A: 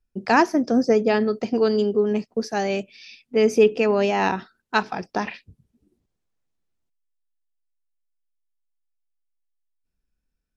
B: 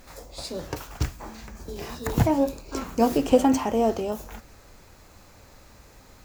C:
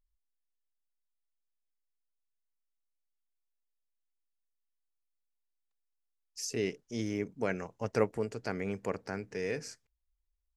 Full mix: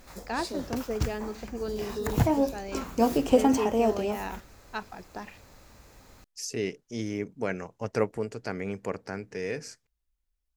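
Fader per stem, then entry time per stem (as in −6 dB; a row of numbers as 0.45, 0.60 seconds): −14.5, −2.5, +2.0 decibels; 0.00, 0.00, 0.00 seconds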